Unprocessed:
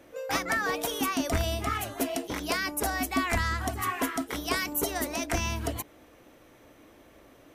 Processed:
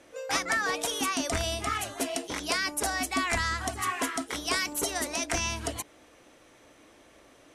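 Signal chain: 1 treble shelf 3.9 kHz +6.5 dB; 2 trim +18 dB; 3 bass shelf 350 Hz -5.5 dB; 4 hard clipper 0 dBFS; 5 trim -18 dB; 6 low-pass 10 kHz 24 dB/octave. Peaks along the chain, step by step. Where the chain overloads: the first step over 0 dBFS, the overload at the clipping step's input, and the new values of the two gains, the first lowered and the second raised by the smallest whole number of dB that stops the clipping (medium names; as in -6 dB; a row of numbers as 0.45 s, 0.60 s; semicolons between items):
-9.0 dBFS, +9.0 dBFS, +9.0 dBFS, 0.0 dBFS, -18.0 dBFS, -16.0 dBFS; step 2, 9.0 dB; step 2 +9 dB, step 5 -9 dB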